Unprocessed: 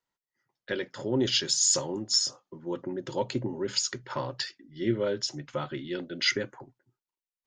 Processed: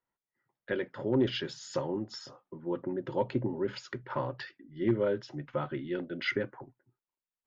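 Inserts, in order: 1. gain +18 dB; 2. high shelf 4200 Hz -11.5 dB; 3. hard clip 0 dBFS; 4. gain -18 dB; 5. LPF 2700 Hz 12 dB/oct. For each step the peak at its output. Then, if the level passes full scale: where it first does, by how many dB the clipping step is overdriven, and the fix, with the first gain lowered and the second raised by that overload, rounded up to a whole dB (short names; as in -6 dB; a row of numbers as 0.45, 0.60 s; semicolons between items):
+6.0, +3.0, 0.0, -18.0, -18.0 dBFS; step 1, 3.0 dB; step 1 +15 dB, step 4 -15 dB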